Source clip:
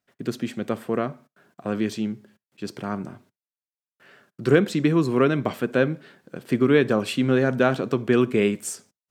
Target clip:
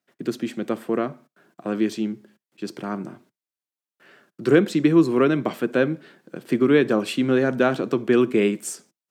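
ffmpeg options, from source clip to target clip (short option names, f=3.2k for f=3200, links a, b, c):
-af "highpass=f=140:w=0.5412,highpass=f=140:w=1.3066,equalizer=f=330:t=o:w=0.24:g=6.5"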